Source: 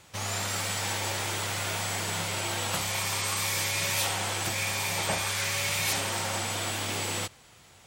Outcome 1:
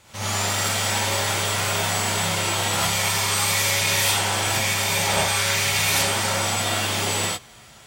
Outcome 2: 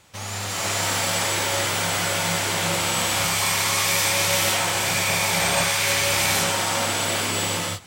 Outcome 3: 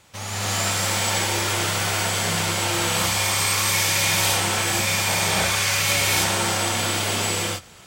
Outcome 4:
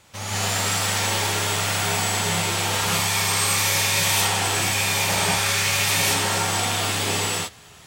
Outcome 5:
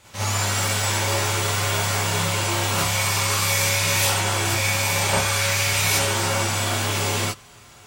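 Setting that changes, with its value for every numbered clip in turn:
non-linear reverb, gate: 120, 530, 340, 230, 80 ms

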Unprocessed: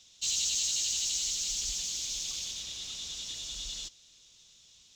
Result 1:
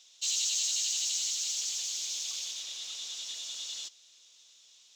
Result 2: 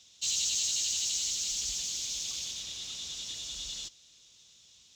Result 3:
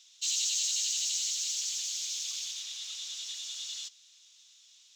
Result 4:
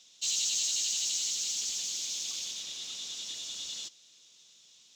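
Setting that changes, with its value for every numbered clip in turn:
HPF, cutoff: 530, 53, 1300, 210 Hz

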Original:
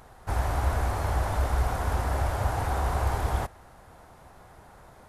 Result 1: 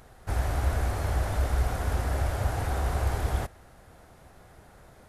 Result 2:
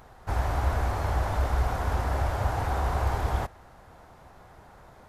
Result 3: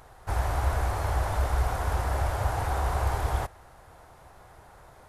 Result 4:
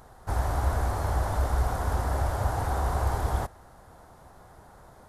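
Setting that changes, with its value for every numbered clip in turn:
bell, frequency: 960, 10000, 220, 2500 Hz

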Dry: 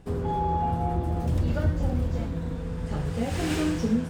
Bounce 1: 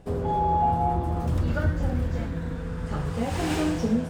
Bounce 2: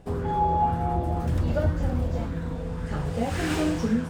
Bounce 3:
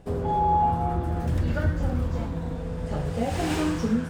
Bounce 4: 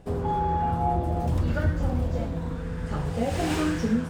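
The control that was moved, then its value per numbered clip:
LFO bell, rate: 0.23, 1.9, 0.34, 0.91 Hz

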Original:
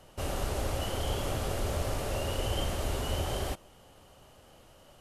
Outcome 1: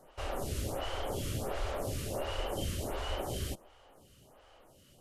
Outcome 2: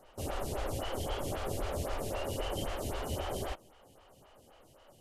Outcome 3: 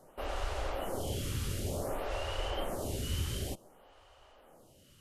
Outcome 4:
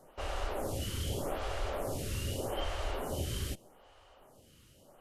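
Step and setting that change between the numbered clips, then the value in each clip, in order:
photocell phaser, rate: 1.4, 3.8, 0.55, 0.82 Hz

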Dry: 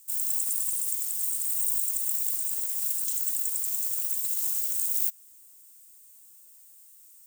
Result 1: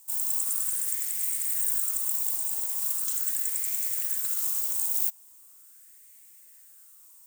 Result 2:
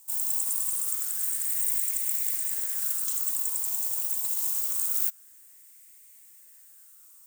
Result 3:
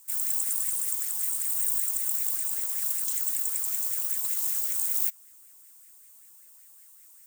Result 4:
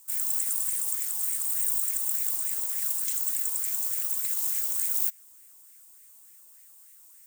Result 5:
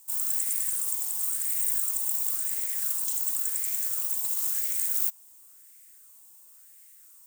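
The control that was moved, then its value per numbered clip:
LFO bell, rate: 0.4, 0.25, 5.2, 3.4, 0.95 Hz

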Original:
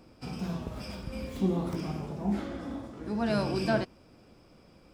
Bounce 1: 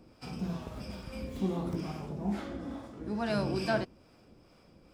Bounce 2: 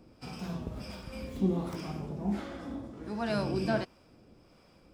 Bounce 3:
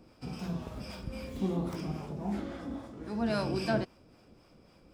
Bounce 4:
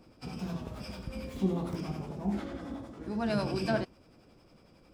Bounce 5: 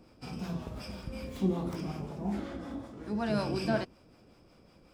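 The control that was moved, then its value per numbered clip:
harmonic tremolo, rate: 2.3, 1.4, 3.7, 11, 5.4 Hz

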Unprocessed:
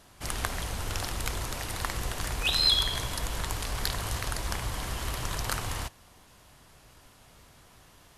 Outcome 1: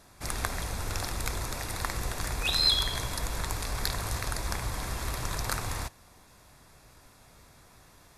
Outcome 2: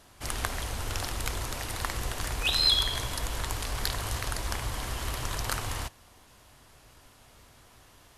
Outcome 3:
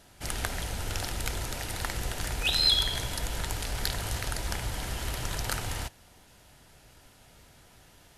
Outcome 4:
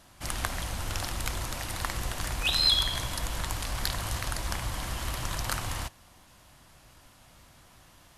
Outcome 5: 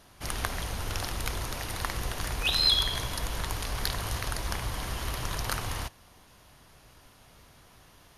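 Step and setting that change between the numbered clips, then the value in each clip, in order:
notch, frequency: 3000, 170, 1100, 430, 7700 Hz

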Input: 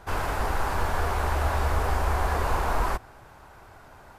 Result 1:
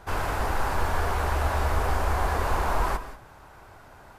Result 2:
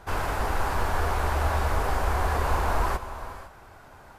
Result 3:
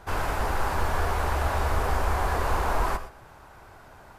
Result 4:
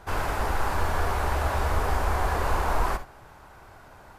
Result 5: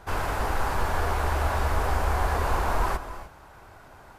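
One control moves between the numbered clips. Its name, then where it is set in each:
non-linear reverb, gate: 210, 540, 140, 90, 330 ms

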